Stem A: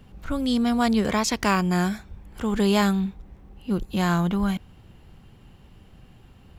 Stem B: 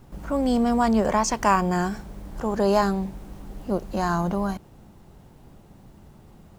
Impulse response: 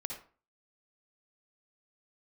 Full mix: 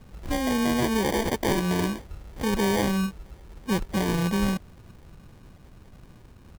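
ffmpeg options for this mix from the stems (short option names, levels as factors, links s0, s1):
-filter_complex "[0:a]alimiter=limit=0.178:level=0:latency=1:release=115,volume=1.06[s0];[1:a]lowpass=f=1700:t=q:w=15,adelay=2,volume=0.251[s1];[s0][s1]amix=inputs=2:normalize=0,acrusher=samples=33:mix=1:aa=0.000001"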